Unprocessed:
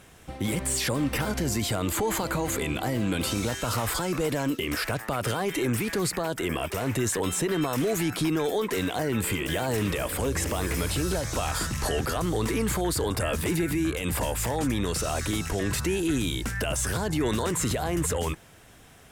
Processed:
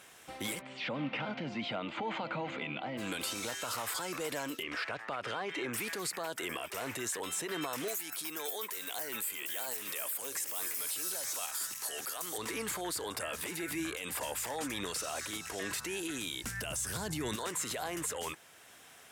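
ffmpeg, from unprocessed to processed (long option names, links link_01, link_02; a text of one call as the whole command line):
ffmpeg -i in.wav -filter_complex "[0:a]asplit=3[link_01][link_02][link_03];[link_01]afade=type=out:start_time=0.6:duration=0.02[link_04];[link_02]highpass=frequency=120:width=0.5412,highpass=frequency=120:width=1.3066,equalizer=frequency=150:width_type=q:width=4:gain=6,equalizer=frequency=230:width_type=q:width=4:gain=5,equalizer=frequency=400:width_type=q:width=4:gain=-9,equalizer=frequency=1100:width_type=q:width=4:gain=-6,equalizer=frequency=1700:width_type=q:width=4:gain=-9,lowpass=frequency=3000:width=0.5412,lowpass=frequency=3000:width=1.3066,afade=type=in:start_time=0.6:duration=0.02,afade=type=out:start_time=2.97:duration=0.02[link_05];[link_03]afade=type=in:start_time=2.97:duration=0.02[link_06];[link_04][link_05][link_06]amix=inputs=3:normalize=0,asplit=3[link_07][link_08][link_09];[link_07]afade=type=out:start_time=4.62:duration=0.02[link_10];[link_08]lowpass=3500,afade=type=in:start_time=4.62:duration=0.02,afade=type=out:start_time=5.72:duration=0.02[link_11];[link_09]afade=type=in:start_time=5.72:duration=0.02[link_12];[link_10][link_11][link_12]amix=inputs=3:normalize=0,asettb=1/sr,asplit=3[link_13][link_14][link_15];[link_13]atrim=end=7.884[link_16];[link_14]atrim=start=7.88:end=12.38,asetpts=PTS-STARTPTS,afade=type=in:duration=0.004:curve=qsin,afade=type=out:start_time=4.496:duration=0.004:curve=qsin,aemphasis=mode=production:type=bsi[link_17];[link_15]atrim=start=12.376[link_18];[link_16][link_17]acrossfade=duration=0.004:curve1=hsin:curve2=qsin[link_19];[link_19][link_18]acrossfade=duration=0.004:curve1=qsin:curve2=hsin,asettb=1/sr,asplit=3[link_20][link_21][link_22];[link_20]atrim=end=13.274[link_23];[link_21]atrim=start=13.27:end=15.77,asetpts=PTS-STARTPTS,afade=type=in:duration=0.004:curve=qsin,afade=type=out:start_time=2.496:duration=0.004:curve=qsin,aphaser=in_gain=1:out_gain=1:delay=4.8:decay=0.25:speed=1.9:type=triangular[link_24];[link_22]atrim=start=15.766[link_25];[link_23][link_24]acrossfade=duration=0.004:curve1=hsin:curve2=qsin[link_26];[link_26][link_25]acrossfade=duration=0.004:curve1=qsin:curve2=hsin,asettb=1/sr,asplit=3[link_27][link_28][link_29];[link_27]atrim=end=16.444[link_30];[link_28]atrim=start=16.44:end=17.36,asetpts=PTS-STARTPTS,afade=type=in:duration=0.004:curve=qsin,afade=type=out:start_time=0.916:duration=0.004:curve=qsin,bass=frequency=250:gain=14,treble=frequency=4000:gain=5[link_31];[link_29]atrim=start=17.356[link_32];[link_30][link_31]acrossfade=duration=0.004:curve1=hsin:curve2=qsin[link_33];[link_33][link_32]acrossfade=duration=0.004:curve1=qsin:curve2=hsin,highpass=frequency=870:poles=1,alimiter=level_in=2dB:limit=-24dB:level=0:latency=1:release=472,volume=-2dB" out.wav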